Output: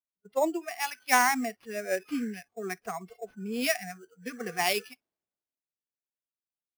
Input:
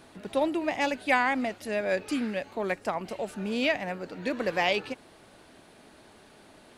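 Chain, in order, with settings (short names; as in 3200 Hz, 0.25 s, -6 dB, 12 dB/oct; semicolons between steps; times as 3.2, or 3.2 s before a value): spectral noise reduction 28 dB; high shelf 5700 Hz -11.5 dB; sample-rate reducer 7600 Hz, jitter 0%; three-band expander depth 70%; gain -1.5 dB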